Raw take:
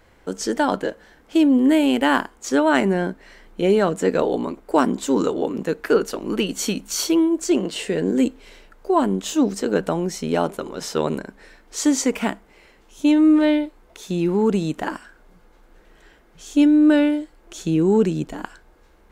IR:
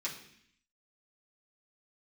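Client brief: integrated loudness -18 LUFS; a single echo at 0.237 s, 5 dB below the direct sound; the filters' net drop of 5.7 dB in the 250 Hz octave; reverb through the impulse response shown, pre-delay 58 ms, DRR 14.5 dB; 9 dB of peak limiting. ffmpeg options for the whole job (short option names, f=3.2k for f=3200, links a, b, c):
-filter_complex "[0:a]equalizer=f=250:t=o:g=-7.5,alimiter=limit=-13.5dB:level=0:latency=1,aecho=1:1:237:0.562,asplit=2[a][b];[1:a]atrim=start_sample=2205,adelay=58[c];[b][c]afir=irnorm=-1:irlink=0,volume=-16.5dB[d];[a][d]amix=inputs=2:normalize=0,volume=6dB"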